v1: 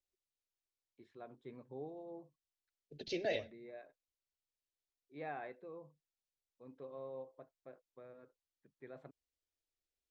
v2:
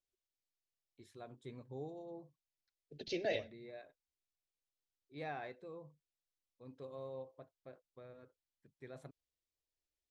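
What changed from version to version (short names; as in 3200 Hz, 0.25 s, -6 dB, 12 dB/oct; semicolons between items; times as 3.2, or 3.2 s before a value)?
first voice: remove BPF 180–2400 Hz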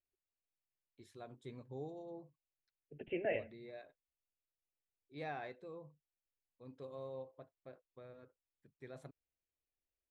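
second voice: add steep low-pass 2900 Hz 96 dB/oct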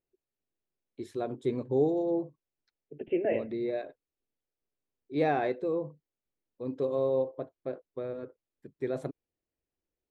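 first voice +10.5 dB; master: add bell 360 Hz +11.5 dB 1.8 oct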